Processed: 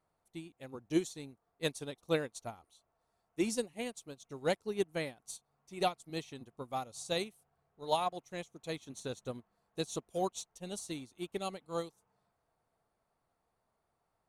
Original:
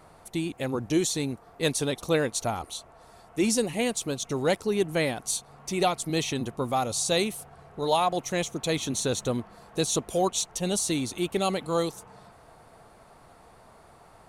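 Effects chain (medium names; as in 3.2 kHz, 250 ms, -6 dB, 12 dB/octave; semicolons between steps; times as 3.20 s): upward expansion 2.5:1, over -35 dBFS; trim -4.5 dB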